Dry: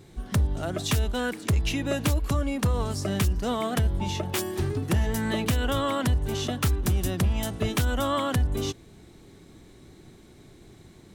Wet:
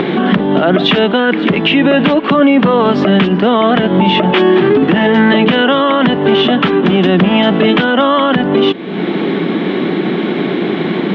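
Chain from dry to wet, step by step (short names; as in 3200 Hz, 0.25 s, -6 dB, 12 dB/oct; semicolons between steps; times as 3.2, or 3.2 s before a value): Chebyshev band-pass 180–3300 Hz, order 4; upward compressor, threshold -27 dBFS; maximiser +26 dB; gain -1 dB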